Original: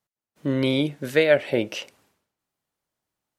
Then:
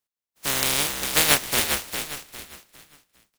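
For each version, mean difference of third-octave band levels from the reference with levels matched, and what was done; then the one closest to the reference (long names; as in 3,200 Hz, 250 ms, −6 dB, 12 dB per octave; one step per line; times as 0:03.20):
16.0 dB: compressing power law on the bin magnitudes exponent 0.13
on a send: echo with shifted repeats 404 ms, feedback 32%, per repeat −75 Hz, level −6.5 dB
on the sum: level −1 dB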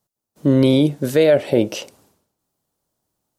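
3.0 dB: parametric band 2,100 Hz −11.5 dB 1.7 octaves
boost into a limiter +14 dB
level −4 dB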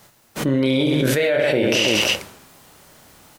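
8.5 dB: reverse bouncing-ball delay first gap 30 ms, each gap 1.4×, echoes 5
envelope flattener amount 100%
level −7 dB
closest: second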